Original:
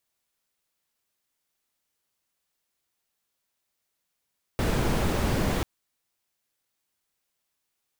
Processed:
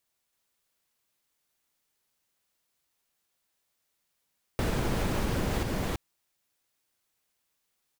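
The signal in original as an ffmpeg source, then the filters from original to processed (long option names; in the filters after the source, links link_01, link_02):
-f lavfi -i "anoisesrc=color=brown:amplitude=0.279:duration=1.04:sample_rate=44100:seed=1"
-af "aecho=1:1:328:0.668,acompressor=threshold=-25dB:ratio=6"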